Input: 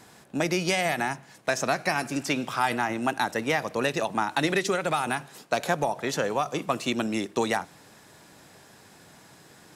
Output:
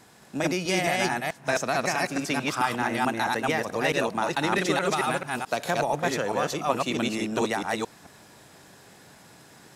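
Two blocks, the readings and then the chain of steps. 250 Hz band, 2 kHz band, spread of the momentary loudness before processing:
+1.0 dB, +1.0 dB, 5 LU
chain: chunks repeated in reverse 218 ms, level 0 dB; trim -2 dB

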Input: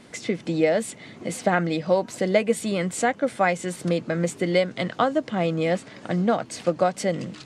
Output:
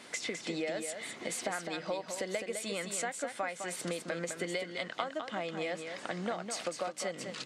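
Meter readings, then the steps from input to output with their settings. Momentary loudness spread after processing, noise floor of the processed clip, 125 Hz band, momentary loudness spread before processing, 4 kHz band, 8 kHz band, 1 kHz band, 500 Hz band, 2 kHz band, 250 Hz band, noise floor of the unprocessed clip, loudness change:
3 LU, -49 dBFS, -18.5 dB, 6 LU, -5.0 dB, -3.5 dB, -13.0 dB, -14.0 dB, -9.0 dB, -16.0 dB, -47 dBFS, -12.5 dB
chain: high-pass 910 Hz 6 dB/octave; compression 6:1, threshold -37 dBFS, peak gain reduction 17 dB; delay 207 ms -7 dB; trim +3 dB

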